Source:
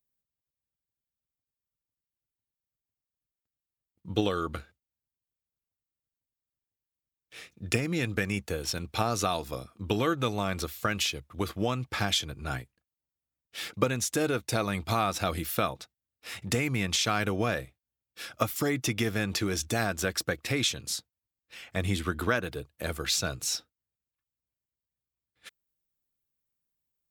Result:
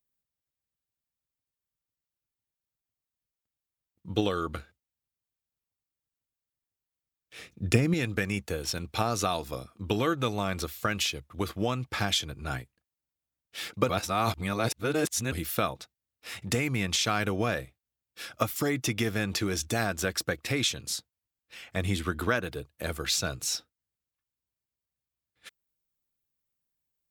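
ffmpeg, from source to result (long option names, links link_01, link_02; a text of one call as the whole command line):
ffmpeg -i in.wav -filter_complex "[0:a]asettb=1/sr,asplit=3[link_01][link_02][link_03];[link_01]atrim=end=7.394[link_04];[link_02]atrim=start=7.39:end=7.94,asetpts=PTS-STARTPTS,afade=type=in:duration=0.004:curve=qsin,afade=type=out:start_time=0.546:duration=0.004:curve=qsin,lowshelf=frequency=470:gain=7.5[link_05];[link_03]atrim=start=7.936[link_06];[link_04][link_05]acrossfade=duration=0.004:curve1=hsin:curve2=qsin[link_07];[link_07][link_06]acrossfade=duration=0.004:curve1=qsin:curve2=hsin,asplit=3[link_08][link_09][link_10];[link_08]atrim=end=13.892[link_11];[link_09]atrim=start=13.888:end=15.322,asetpts=PTS-STARTPTS,areverse[link_12];[link_10]atrim=start=15.318[link_13];[link_11][link_12]acrossfade=duration=0.004:curve1=hsin:curve2=hsin[link_14];[link_14][link_13]acrossfade=duration=0.004:curve1=hsin:curve2=hsin" out.wav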